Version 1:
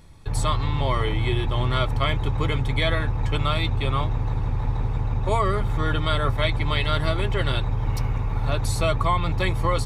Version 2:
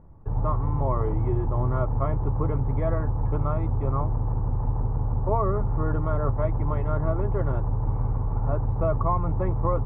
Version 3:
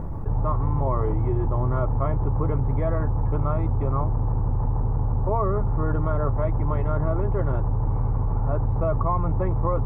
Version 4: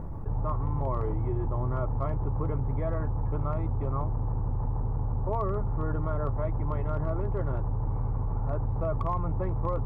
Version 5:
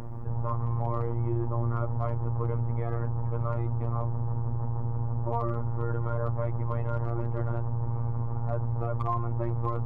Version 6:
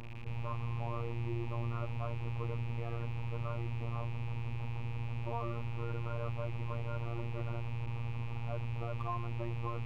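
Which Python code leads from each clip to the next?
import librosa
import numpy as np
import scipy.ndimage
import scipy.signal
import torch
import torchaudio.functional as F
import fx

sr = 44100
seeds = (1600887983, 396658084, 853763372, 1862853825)

y1 = scipy.signal.sosfilt(scipy.signal.butter(4, 1100.0, 'lowpass', fs=sr, output='sos'), x)
y1 = y1 * 10.0 ** (-1.0 / 20.0)
y2 = fx.env_flatten(y1, sr, amount_pct=70)
y2 = y2 * 10.0 ** (-1.0 / 20.0)
y3 = np.clip(y2, -10.0 ** (-13.0 / 20.0), 10.0 ** (-13.0 / 20.0))
y3 = y3 * 10.0 ** (-6.0 / 20.0)
y4 = fx.robotise(y3, sr, hz=117.0)
y4 = y4 * 10.0 ** (2.5 / 20.0)
y5 = fx.rattle_buzz(y4, sr, strikes_db=-37.0, level_db=-33.0)
y5 = y5 * 10.0 ** (-8.5 / 20.0)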